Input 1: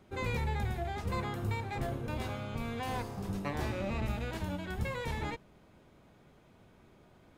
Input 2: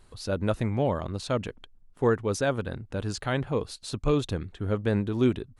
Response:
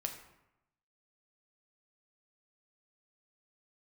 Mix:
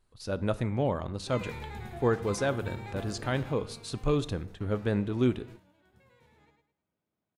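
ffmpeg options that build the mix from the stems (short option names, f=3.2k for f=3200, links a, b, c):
-filter_complex "[0:a]highpass=89,adelay=1150,volume=-6dB,afade=t=out:st=3.16:d=0.77:silence=0.251189,asplit=2[a][b];[b]volume=-5dB[c];[1:a]dynaudnorm=f=180:g=3:m=3.5dB,volume=-9dB,asplit=2[d][e];[e]volume=-7dB[f];[2:a]atrim=start_sample=2205[g];[f][g]afir=irnorm=-1:irlink=0[h];[c]aecho=0:1:106|212|318|424:1|0.28|0.0784|0.022[i];[a][d][h][i]amix=inputs=4:normalize=0,agate=range=-9dB:threshold=-47dB:ratio=16:detection=peak"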